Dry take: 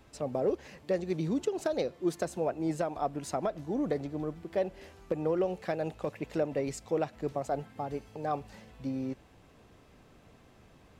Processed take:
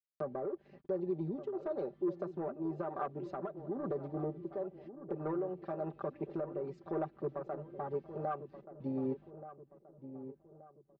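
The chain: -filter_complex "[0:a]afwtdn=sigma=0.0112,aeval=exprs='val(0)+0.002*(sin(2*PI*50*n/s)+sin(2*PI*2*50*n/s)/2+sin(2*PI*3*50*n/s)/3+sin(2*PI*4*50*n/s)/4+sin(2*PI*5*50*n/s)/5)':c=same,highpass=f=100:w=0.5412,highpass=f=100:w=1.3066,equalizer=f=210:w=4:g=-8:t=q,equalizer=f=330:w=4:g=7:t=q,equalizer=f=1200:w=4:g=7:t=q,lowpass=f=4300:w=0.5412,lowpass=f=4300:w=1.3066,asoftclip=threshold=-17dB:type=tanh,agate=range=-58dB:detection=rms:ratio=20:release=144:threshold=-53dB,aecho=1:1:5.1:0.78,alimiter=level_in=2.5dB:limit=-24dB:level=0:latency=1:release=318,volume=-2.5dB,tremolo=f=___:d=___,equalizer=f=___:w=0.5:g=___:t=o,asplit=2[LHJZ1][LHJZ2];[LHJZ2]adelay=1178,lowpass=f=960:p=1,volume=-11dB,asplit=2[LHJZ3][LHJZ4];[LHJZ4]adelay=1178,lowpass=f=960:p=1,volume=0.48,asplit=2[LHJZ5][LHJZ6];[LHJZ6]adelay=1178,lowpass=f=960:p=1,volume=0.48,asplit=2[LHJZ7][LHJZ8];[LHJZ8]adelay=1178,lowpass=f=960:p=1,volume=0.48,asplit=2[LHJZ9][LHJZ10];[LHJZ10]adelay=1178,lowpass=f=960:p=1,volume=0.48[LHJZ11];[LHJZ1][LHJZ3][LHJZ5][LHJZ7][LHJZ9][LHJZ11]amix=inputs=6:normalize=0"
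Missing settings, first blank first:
0.99, 0.38, 1600, 2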